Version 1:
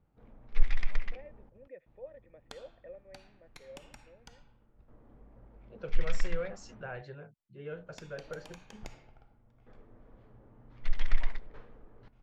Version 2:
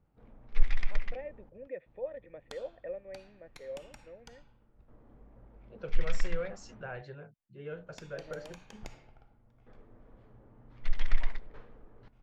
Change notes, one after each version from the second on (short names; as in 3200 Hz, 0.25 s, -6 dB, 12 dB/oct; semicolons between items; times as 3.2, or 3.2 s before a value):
first voice +8.5 dB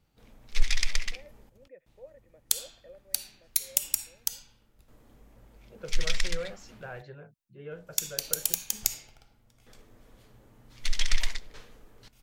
first voice -11.0 dB; background: remove LPF 1300 Hz 12 dB/oct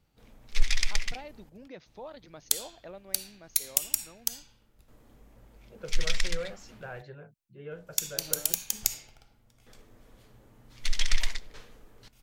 first voice: remove vocal tract filter e